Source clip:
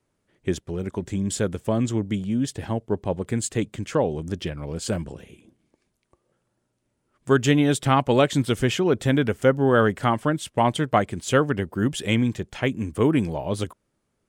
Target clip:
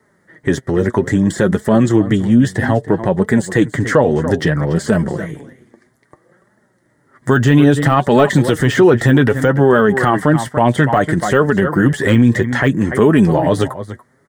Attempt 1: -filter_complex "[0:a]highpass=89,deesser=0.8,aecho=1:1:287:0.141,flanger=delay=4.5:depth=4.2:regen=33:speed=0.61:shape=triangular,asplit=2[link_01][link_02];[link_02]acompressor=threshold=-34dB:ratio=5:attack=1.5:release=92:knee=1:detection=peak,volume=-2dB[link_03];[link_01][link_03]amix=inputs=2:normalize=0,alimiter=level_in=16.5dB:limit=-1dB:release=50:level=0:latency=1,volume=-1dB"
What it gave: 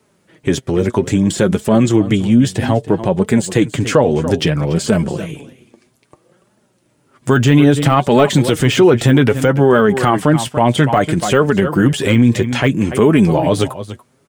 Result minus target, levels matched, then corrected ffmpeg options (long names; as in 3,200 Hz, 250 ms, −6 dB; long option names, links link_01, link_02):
2,000 Hz band −2.5 dB
-filter_complex "[0:a]highpass=89,deesser=0.8,aecho=1:1:287:0.141,flanger=delay=4.5:depth=4.2:regen=33:speed=0.61:shape=triangular,asplit=2[link_01][link_02];[link_02]acompressor=threshold=-34dB:ratio=5:attack=1.5:release=92:knee=1:detection=peak,lowpass=frequency=1900:width_type=q:width=8.5,volume=-2dB[link_03];[link_01][link_03]amix=inputs=2:normalize=0,alimiter=level_in=16.5dB:limit=-1dB:release=50:level=0:latency=1,volume=-1dB"